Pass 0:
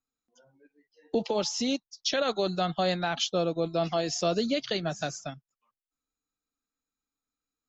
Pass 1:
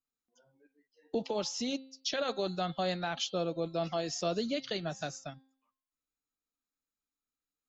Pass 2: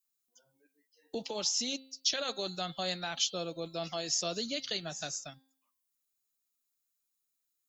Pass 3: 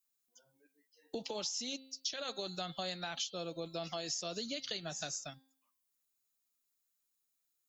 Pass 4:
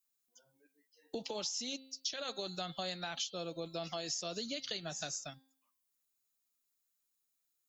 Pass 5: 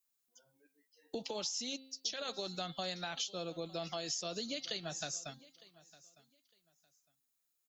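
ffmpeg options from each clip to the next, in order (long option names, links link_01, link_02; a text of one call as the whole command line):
ffmpeg -i in.wav -af "bandreject=frequency=265.5:width_type=h:width=4,bandreject=frequency=531:width_type=h:width=4,bandreject=frequency=796.5:width_type=h:width=4,bandreject=frequency=1062:width_type=h:width=4,bandreject=frequency=1327.5:width_type=h:width=4,bandreject=frequency=1593:width_type=h:width=4,bandreject=frequency=1858.5:width_type=h:width=4,bandreject=frequency=2124:width_type=h:width=4,bandreject=frequency=2389.5:width_type=h:width=4,bandreject=frequency=2655:width_type=h:width=4,bandreject=frequency=2920.5:width_type=h:width=4,bandreject=frequency=3186:width_type=h:width=4,bandreject=frequency=3451.5:width_type=h:width=4,bandreject=frequency=3717:width_type=h:width=4,bandreject=frequency=3982.5:width_type=h:width=4,bandreject=frequency=4248:width_type=h:width=4,bandreject=frequency=4513.5:width_type=h:width=4,bandreject=frequency=4779:width_type=h:width=4,volume=-5.5dB" out.wav
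ffmpeg -i in.wav -af "crystalizer=i=5:c=0,volume=-5.5dB" out.wav
ffmpeg -i in.wav -af "acompressor=threshold=-36dB:ratio=6" out.wav
ffmpeg -i in.wav -af anull out.wav
ffmpeg -i in.wav -af "aecho=1:1:907|1814:0.0891|0.0196" out.wav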